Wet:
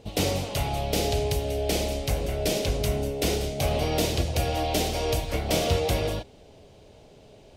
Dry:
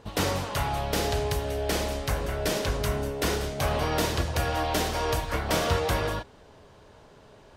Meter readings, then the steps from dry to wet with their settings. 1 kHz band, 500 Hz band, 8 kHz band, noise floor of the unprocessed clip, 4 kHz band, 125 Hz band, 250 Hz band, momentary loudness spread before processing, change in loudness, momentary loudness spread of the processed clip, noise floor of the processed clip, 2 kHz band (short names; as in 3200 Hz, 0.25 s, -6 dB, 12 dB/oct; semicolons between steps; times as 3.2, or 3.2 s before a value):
-2.5 dB, +2.0 dB, +2.0 dB, -53 dBFS, +2.0 dB, +2.0 dB, +2.0 dB, 3 LU, +1.0 dB, 3 LU, -52 dBFS, -3.0 dB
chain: band shelf 1300 Hz -11.5 dB 1.2 oct; gain +2 dB